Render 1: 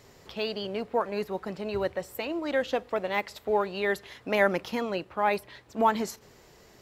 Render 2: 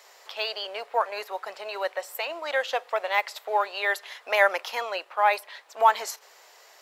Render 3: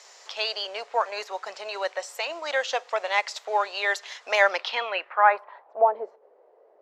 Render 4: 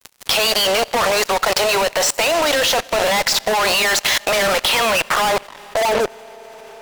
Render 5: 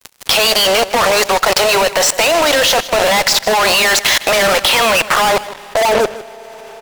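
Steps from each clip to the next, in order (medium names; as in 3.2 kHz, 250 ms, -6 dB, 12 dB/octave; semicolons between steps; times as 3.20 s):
high-pass 620 Hz 24 dB/octave; trim +5.5 dB
low-pass sweep 6.5 kHz -> 490 Hz, 4.36–5.95 s
fuzz box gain 46 dB, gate -43 dBFS; Schroeder reverb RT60 3.4 s, combs from 25 ms, DRR 15 dB; level held to a coarse grid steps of 22 dB; trim +5.5 dB
delay 156 ms -16 dB; trim +4.5 dB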